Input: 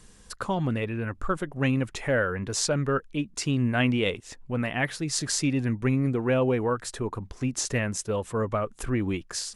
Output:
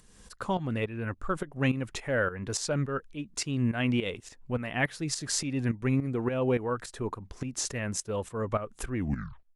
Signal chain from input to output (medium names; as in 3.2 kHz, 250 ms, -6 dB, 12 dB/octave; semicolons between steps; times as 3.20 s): tape stop on the ending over 0.60 s; upward compressor, threshold -46 dBFS; tremolo saw up 3.5 Hz, depth 75%